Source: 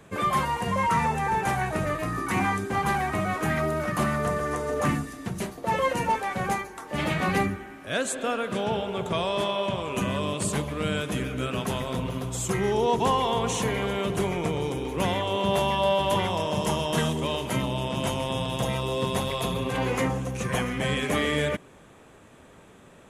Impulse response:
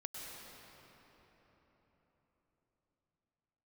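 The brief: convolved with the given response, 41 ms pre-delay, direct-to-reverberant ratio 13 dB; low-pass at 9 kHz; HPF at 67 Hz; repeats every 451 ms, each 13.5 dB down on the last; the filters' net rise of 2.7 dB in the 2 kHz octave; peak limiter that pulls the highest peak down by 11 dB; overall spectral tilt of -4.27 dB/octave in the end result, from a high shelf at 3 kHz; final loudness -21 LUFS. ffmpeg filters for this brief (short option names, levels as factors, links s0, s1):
-filter_complex "[0:a]highpass=67,lowpass=9000,equalizer=f=2000:t=o:g=5.5,highshelf=f=3000:g=-6,alimiter=limit=0.0794:level=0:latency=1,aecho=1:1:451|902:0.211|0.0444,asplit=2[s0][s1];[1:a]atrim=start_sample=2205,adelay=41[s2];[s1][s2]afir=irnorm=-1:irlink=0,volume=0.251[s3];[s0][s3]amix=inputs=2:normalize=0,volume=2.99"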